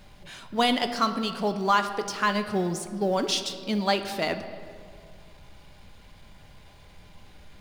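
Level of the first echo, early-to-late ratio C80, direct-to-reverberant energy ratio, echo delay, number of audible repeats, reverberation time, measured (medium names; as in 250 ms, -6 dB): no echo, 11.0 dB, 8.0 dB, no echo, no echo, 2.1 s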